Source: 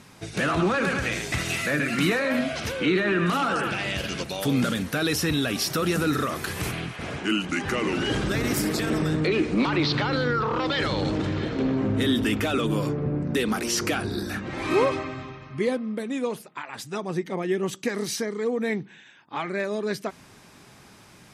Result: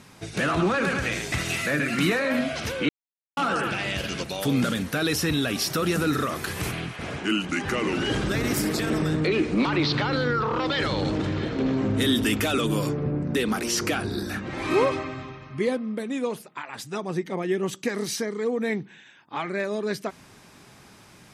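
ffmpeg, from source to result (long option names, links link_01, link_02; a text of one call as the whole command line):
ffmpeg -i in.wav -filter_complex "[0:a]asettb=1/sr,asplit=3[link_01][link_02][link_03];[link_01]atrim=end=11.664[link_04];[link_02]atrim=start=11.66:end=13.11,asetpts=PTS-STARTPTS,afade=type=in:duration=0.004:curve=qsin,afade=type=out:start_time=1.446:duration=0.004:curve=qsin,highshelf=frequency=4300:gain=8.5[link_05];[link_03]atrim=start=13.106[link_06];[link_04][link_05]acrossfade=duration=0.004:curve1=hsin:curve2=qsin[link_07];[link_07][link_06]acrossfade=duration=0.004:curve1=qsin:curve2=hsin,asplit=3[link_08][link_09][link_10];[link_08]atrim=end=2.89,asetpts=PTS-STARTPTS,afade=type=out:start_time=2.886:duration=0.004:curve=hsin[link_11];[link_09]atrim=start=2.89:end=3.37,asetpts=PTS-STARTPTS,volume=0[link_12];[link_10]atrim=start=3.37,asetpts=PTS-STARTPTS,afade=type=in:duration=0.004:curve=hsin[link_13];[link_11][link_12][link_13]concat=n=3:v=0:a=1" out.wav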